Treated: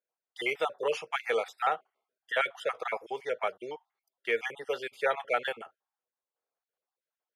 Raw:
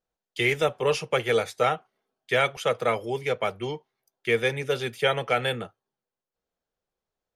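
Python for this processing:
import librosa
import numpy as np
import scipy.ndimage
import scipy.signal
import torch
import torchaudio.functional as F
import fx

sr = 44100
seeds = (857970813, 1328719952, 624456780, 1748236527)

y = fx.spec_dropout(x, sr, seeds[0], share_pct=33)
y = scipy.signal.sosfilt(scipy.signal.butter(2, 590.0, 'highpass', fs=sr, output='sos'), y)
y = fx.high_shelf(y, sr, hz=2700.0, db=-11.0)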